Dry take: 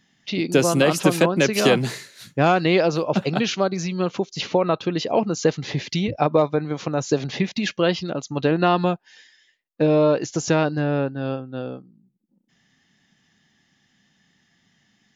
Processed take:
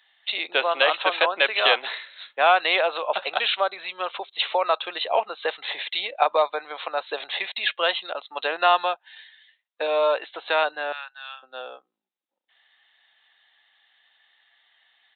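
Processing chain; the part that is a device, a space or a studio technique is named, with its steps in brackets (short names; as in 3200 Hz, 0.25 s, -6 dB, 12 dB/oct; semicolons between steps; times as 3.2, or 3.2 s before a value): 10.92–11.43 Bessel high-pass 1600 Hz, order 6; musical greeting card (downsampling 8000 Hz; HPF 660 Hz 24 dB/oct; bell 4000 Hz +11.5 dB 0.29 oct); gain +3 dB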